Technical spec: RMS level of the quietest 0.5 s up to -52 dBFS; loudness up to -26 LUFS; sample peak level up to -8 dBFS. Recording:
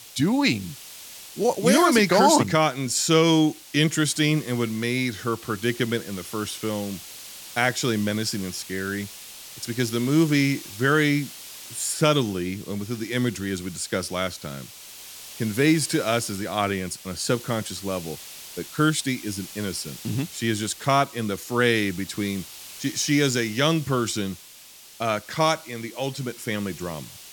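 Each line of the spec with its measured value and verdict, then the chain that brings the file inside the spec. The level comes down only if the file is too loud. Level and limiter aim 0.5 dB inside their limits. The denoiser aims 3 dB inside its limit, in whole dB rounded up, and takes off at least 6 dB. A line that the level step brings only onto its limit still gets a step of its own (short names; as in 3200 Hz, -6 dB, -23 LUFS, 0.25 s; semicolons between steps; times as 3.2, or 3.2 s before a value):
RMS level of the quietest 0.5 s -47 dBFS: fail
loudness -24.0 LUFS: fail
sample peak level -6.0 dBFS: fail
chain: denoiser 6 dB, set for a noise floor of -47 dBFS; gain -2.5 dB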